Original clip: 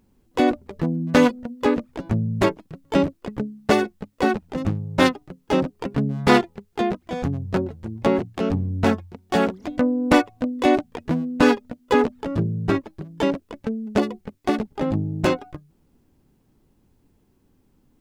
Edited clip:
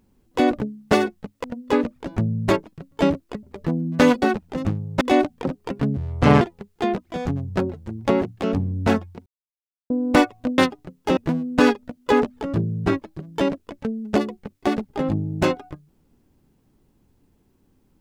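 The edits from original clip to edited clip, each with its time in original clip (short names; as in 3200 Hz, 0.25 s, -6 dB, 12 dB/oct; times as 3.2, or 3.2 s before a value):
0.58–1.37 swap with 3.36–4.22
5.01–5.6 swap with 10.55–10.99
6.12–6.38 speed 59%
9.23–9.87 mute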